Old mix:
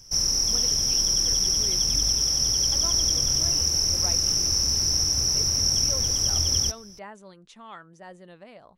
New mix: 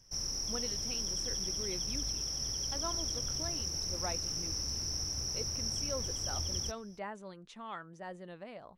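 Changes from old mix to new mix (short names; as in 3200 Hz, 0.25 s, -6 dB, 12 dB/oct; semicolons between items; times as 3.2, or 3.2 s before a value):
background -10.0 dB; master: add high shelf 4400 Hz -6.5 dB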